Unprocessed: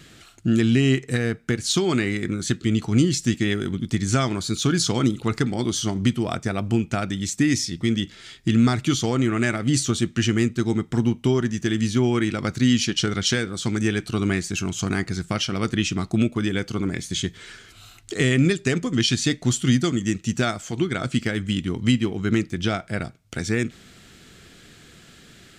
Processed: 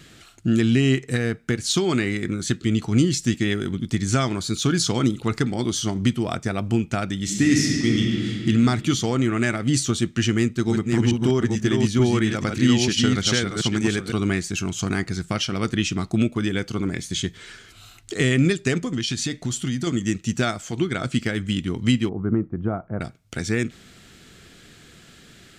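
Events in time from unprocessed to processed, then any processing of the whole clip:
7.18–8.38 reverb throw, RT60 2.8 s, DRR -1 dB
10.23–14.12 reverse delay 0.442 s, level -3.5 dB
18.84–19.87 compressor, threshold -21 dBFS
22.09–23.01 Chebyshev low-pass 1100 Hz, order 3

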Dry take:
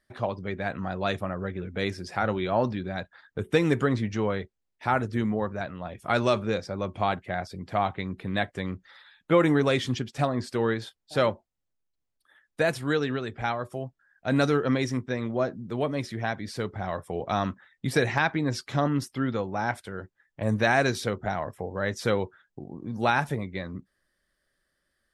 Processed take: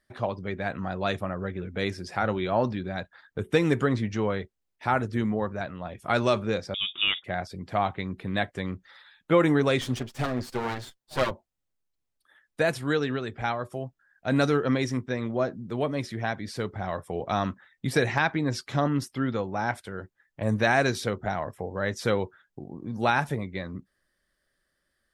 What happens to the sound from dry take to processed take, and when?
6.74–7.24 inverted band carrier 3600 Hz
9.81–11.31 minimum comb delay 7.9 ms

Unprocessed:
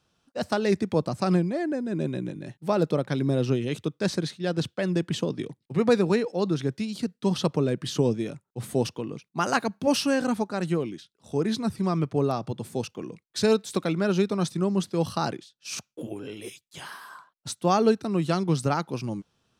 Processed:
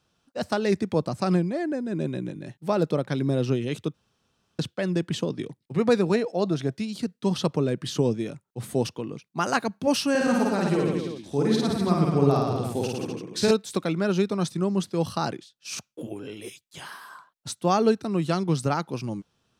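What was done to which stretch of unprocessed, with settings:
3.94–4.59 room tone
6.14–6.75 bell 660 Hz +11.5 dB 0.22 oct
10.1–13.51 reverse bouncing-ball echo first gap 50 ms, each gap 1.15×, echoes 5, each echo -2 dB

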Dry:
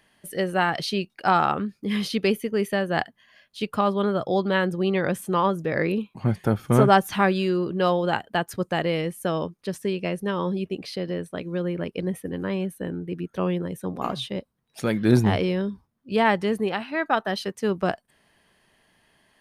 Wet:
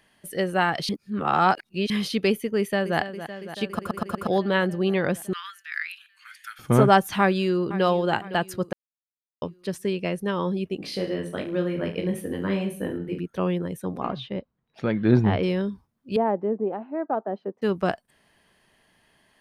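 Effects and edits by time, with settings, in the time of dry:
0.89–1.9 reverse
2.57–2.98 echo throw 0.28 s, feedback 80%, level -11.5 dB
3.67 stutter in place 0.12 s, 5 plays
5.33–6.59 steep high-pass 1400 Hz 48 dB/oct
7.19–7.84 echo throw 0.51 s, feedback 45%, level -15 dB
8.73–9.42 mute
10.78–13.19 reverse bouncing-ball echo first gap 20 ms, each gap 1.2×, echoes 6
14.01–15.43 air absorption 260 m
16.16–17.62 Butterworth band-pass 420 Hz, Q 0.74

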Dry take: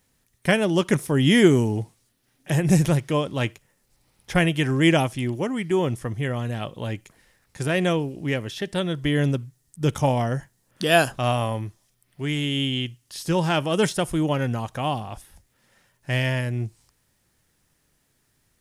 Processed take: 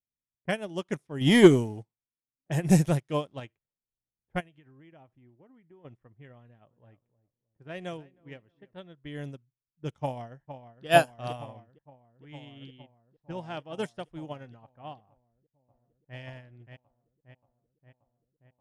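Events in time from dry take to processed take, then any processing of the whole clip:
1.21–3.4 sample leveller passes 1
4.4–5.85 compressor, threshold -24 dBFS
6.39–8.77 feedback echo 0.313 s, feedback 34%, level -13 dB
10.01–10.86 echo throw 0.46 s, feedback 85%, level -4.5 dB
12.5–13.72 high shelf 3900 Hz -> 5600 Hz -7.5 dB
15.1–16.18 echo throw 0.58 s, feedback 85%, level -2 dB
whole clip: low-pass opened by the level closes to 500 Hz, open at -16 dBFS; dynamic EQ 700 Hz, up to +4 dB, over -35 dBFS, Q 2.5; upward expander 2.5:1, over -30 dBFS

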